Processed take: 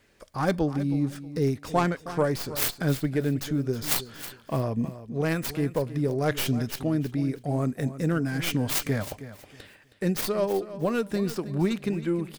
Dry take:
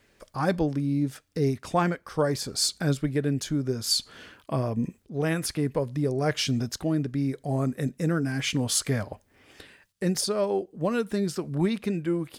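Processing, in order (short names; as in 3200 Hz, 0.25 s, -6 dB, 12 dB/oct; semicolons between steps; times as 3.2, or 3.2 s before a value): tracing distortion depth 0.42 ms; on a send: feedback echo 0.318 s, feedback 24%, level -14 dB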